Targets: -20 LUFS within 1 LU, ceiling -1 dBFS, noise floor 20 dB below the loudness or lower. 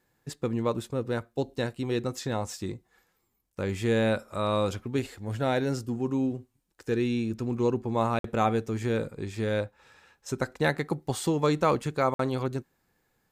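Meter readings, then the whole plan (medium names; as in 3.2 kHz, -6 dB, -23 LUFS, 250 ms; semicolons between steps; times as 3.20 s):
dropouts 2; longest dropout 53 ms; loudness -29.5 LUFS; peak level -11.0 dBFS; loudness target -20.0 LUFS
-> interpolate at 8.19/12.14 s, 53 ms; trim +9.5 dB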